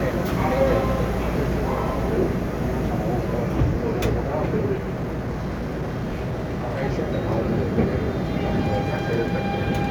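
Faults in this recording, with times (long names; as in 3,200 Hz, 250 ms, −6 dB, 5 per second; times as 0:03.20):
0:04.74–0:06.82: clipping −23 dBFS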